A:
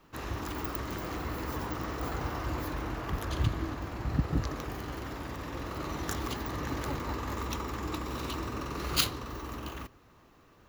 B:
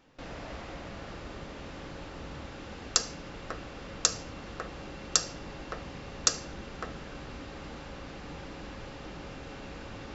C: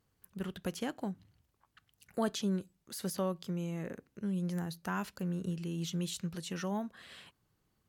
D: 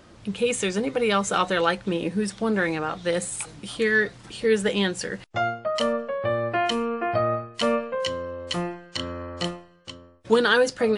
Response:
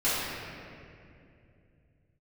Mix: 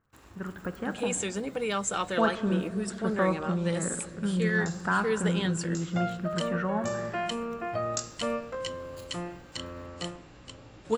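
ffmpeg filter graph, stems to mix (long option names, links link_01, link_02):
-filter_complex "[0:a]equalizer=frequency=10000:width=3.4:gain=6,acompressor=threshold=-52dB:ratio=2,aeval=exprs='sgn(val(0))*max(abs(val(0))-0.00211,0)':channel_layout=same,volume=-5.5dB,afade=type=out:start_time=0.7:duration=0.34:silence=0.473151,asplit=2[link_01][link_02];[link_02]volume=-18.5dB[link_03];[1:a]equalizer=frequency=120:width_type=o:width=0.44:gain=9,flanger=delay=16:depth=5:speed=0.91,adelay=1700,volume=-8dB,asplit=2[link_04][link_05];[link_05]volume=-21.5dB[link_06];[2:a]dynaudnorm=framelen=220:gausssize=11:maxgain=5dB,lowpass=frequency=1500:width_type=q:width=2.3,volume=0dB,asplit=3[link_07][link_08][link_09];[link_08]volume=-21.5dB[link_10];[3:a]adelay=600,volume=-8dB[link_11];[link_09]apad=whole_len=522253[link_12];[link_04][link_12]sidechaincompress=threshold=-45dB:ratio=8:attack=16:release=964[link_13];[4:a]atrim=start_sample=2205[link_14];[link_03][link_06][link_10]amix=inputs=3:normalize=0[link_15];[link_15][link_14]afir=irnorm=-1:irlink=0[link_16];[link_01][link_13][link_07][link_11][link_16]amix=inputs=5:normalize=0,equalizer=frequency=7500:width_type=o:width=0.21:gain=10.5"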